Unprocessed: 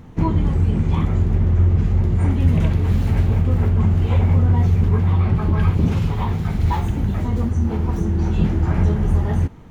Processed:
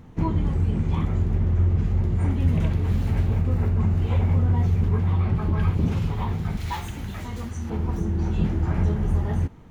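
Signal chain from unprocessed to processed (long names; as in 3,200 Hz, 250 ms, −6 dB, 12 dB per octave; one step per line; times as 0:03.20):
0:03.39–0:03.99: notch filter 3,200 Hz, Q 11
0:06.57–0:07.70: tilt shelving filter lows −7.5 dB, about 1,100 Hz
level −5 dB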